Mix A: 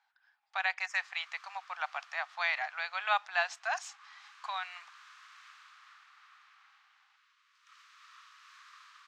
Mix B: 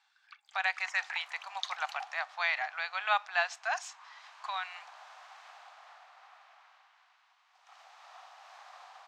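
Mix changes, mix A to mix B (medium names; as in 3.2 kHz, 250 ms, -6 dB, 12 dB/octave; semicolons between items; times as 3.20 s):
speech: send +6.5 dB; first sound: unmuted; second sound: remove steep high-pass 1.1 kHz 72 dB/octave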